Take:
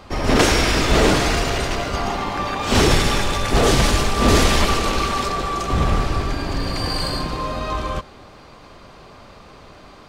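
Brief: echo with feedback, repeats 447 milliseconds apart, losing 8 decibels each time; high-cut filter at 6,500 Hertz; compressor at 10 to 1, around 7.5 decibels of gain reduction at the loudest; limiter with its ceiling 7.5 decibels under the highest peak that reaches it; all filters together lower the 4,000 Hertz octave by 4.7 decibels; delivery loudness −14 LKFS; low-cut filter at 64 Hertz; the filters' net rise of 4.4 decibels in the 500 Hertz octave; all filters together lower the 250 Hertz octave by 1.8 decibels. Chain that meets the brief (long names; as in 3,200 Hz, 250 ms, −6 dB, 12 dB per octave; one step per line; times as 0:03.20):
high-pass filter 64 Hz
low-pass filter 6,500 Hz
parametric band 250 Hz −5 dB
parametric band 500 Hz +7 dB
parametric band 4,000 Hz −5.5 dB
downward compressor 10 to 1, threshold −17 dBFS
brickwall limiter −16 dBFS
repeating echo 447 ms, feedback 40%, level −8 dB
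level +10.5 dB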